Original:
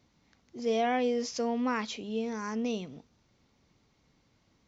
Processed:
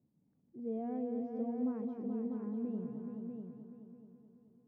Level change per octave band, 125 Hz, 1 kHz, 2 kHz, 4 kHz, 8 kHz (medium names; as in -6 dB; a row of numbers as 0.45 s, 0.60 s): -1.5 dB, -16.5 dB, under -25 dB, under -40 dB, no reading